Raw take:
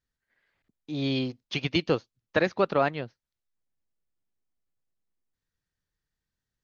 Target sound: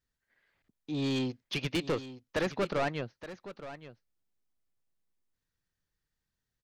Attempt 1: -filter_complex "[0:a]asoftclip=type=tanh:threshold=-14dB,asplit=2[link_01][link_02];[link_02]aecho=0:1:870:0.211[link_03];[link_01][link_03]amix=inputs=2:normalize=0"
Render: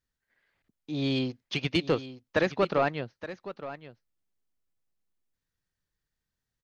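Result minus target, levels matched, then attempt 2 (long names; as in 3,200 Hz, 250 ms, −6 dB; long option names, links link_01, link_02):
soft clipping: distortion −11 dB
-filter_complex "[0:a]asoftclip=type=tanh:threshold=-25.5dB,asplit=2[link_01][link_02];[link_02]aecho=0:1:870:0.211[link_03];[link_01][link_03]amix=inputs=2:normalize=0"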